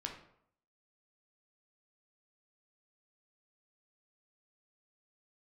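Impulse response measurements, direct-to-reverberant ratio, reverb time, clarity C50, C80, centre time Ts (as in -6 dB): 1.0 dB, 0.70 s, 7.0 dB, 10.5 dB, 23 ms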